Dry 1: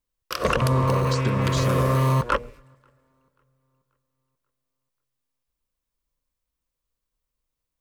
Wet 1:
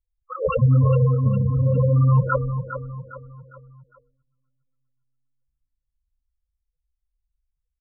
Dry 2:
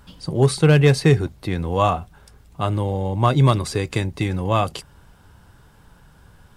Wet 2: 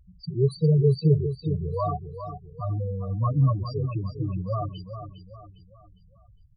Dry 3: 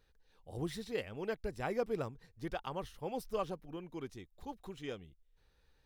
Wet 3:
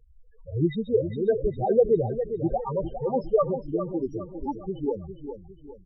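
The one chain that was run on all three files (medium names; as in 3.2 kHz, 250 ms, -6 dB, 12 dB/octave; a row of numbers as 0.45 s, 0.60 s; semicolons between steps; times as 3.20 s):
loudest bins only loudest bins 4; on a send: feedback delay 406 ms, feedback 41%, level -9.5 dB; on the sum: peak normalisation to -9 dBFS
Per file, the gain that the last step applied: +6.5 dB, -4.5 dB, +16.5 dB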